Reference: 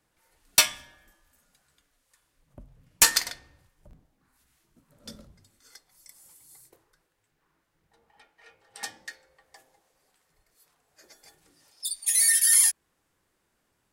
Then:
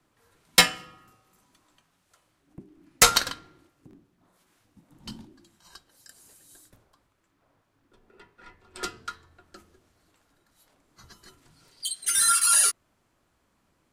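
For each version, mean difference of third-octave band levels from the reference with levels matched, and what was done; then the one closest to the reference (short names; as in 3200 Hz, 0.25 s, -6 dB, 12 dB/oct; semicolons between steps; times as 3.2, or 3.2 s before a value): 5.0 dB: HPF 120 Hz; high shelf 5000 Hz -8.5 dB; frequency shift -440 Hz; gain +6 dB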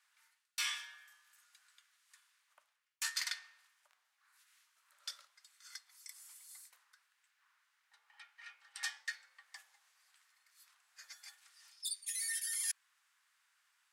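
8.5 dB: HPF 1200 Hz 24 dB/oct; high shelf 11000 Hz -11.5 dB; reverse; compressor 20:1, threshold -38 dBFS, peak gain reduction 24 dB; reverse; gain +3 dB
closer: first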